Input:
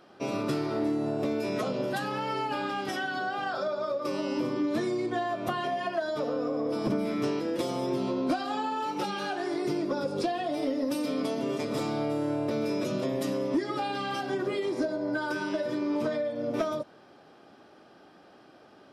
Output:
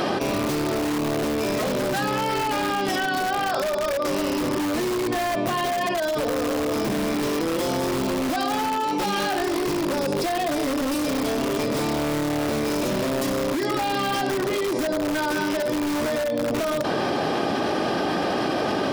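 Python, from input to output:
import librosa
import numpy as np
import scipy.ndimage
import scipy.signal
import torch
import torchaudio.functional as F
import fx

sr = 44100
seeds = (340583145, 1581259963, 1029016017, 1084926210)

p1 = fx.notch(x, sr, hz=1400.0, q=7.4)
p2 = (np.mod(10.0 ** (25.5 / 20.0) * p1 + 1.0, 2.0) - 1.0) / 10.0 ** (25.5 / 20.0)
p3 = p1 + (p2 * librosa.db_to_amplitude(-3.5))
y = fx.env_flatten(p3, sr, amount_pct=100)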